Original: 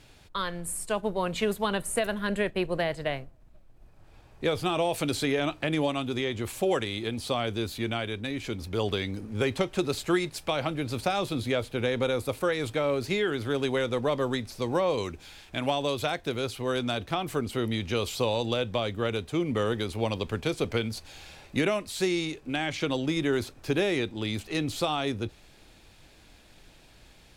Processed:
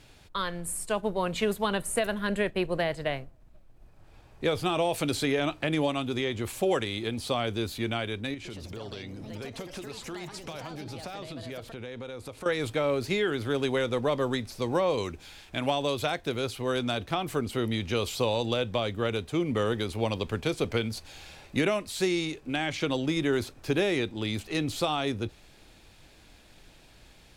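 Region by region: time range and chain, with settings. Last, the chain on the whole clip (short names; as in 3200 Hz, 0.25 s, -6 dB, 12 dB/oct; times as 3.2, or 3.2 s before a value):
8.34–12.46 LPF 9200 Hz + compressor 4:1, threshold -38 dBFS + echoes that change speed 0.113 s, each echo +4 st, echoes 2, each echo -6 dB
whole clip: dry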